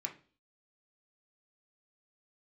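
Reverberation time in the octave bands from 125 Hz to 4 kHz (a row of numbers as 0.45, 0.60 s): 0.45, 0.50, 0.45, 0.35, 0.35, 0.35 s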